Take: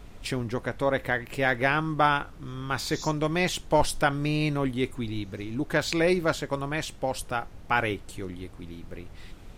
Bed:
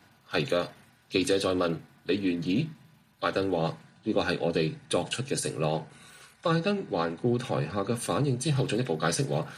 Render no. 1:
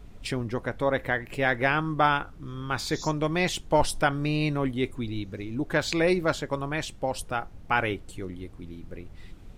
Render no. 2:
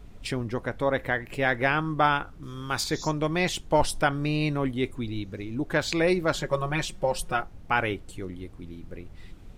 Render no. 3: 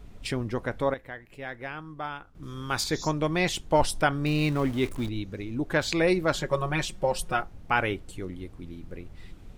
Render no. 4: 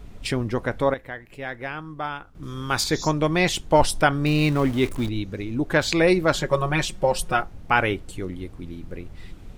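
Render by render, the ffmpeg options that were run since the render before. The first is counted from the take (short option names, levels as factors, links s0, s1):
-af "afftdn=nr=6:nf=-46"
-filter_complex "[0:a]asettb=1/sr,asplit=3[s0][s1][s2];[s0]atrim=end=2.434[s3];[s1]atrim=start=2.43:end=2.84,asetpts=PTS-STARTPTS,afade=t=in:d=0.004:c=qsin,afade=t=out:st=0.406:d=0.004:c=qsin,bass=f=250:g=-2,treble=f=4000:g=9[s4];[s2]atrim=start=2.836[s5];[s3][s4]acrossfade=d=0.004:c1=hsin:c2=qsin[s6];[s6][s5]acrossfade=d=0.004:c1=qsin:c2=hsin,asettb=1/sr,asplit=3[s7][s8][s9];[s7]atrim=end=6.334[s10];[s8]atrim=start=6.33:end=7.42,asetpts=PTS-STARTPTS,afade=t=in:d=0.004:c=qsin,afade=t=out:st=1.086:d=0.004:c=qsin,aecho=1:1:5.5:0.95,atrim=end_sample=48069[s11];[s9]atrim=start=7.416[s12];[s10][s11]acrossfade=d=0.004:c1=hsin:c2=qsin[s13];[s13][s12]acrossfade=d=0.004:c1=qsin:c2=hsin"
-filter_complex "[0:a]asettb=1/sr,asplit=3[s0][s1][s2];[s0]atrim=end=4.264[s3];[s1]atrim=start=4.26:end=5.09,asetpts=PTS-STARTPTS,afade=t=in:d=0.004:c=qsin,afade=t=out:st=0.826:d=0.004:c=qsin,aeval=exprs='val(0)+0.5*0.0158*sgn(val(0))':c=same[s4];[s2]atrim=start=5.086[s5];[s3][s4]acrossfade=d=0.004:c1=hsin:c2=qsin[s6];[s6][s5]acrossfade=d=0.004:c1=qsin:c2=hsin,asplit=3[s7][s8][s9];[s7]atrim=end=0.94,asetpts=PTS-STARTPTS,afade=t=out:st=0.73:d=0.21:c=log:silence=0.223872[s10];[s8]atrim=start=0.94:end=2.35,asetpts=PTS-STARTPTS,volume=0.224[s11];[s9]atrim=start=2.35,asetpts=PTS-STARTPTS,afade=t=in:d=0.21:c=log:silence=0.223872[s12];[s10][s11][s12]concat=n=3:v=0:a=1"
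-af "volume=1.78"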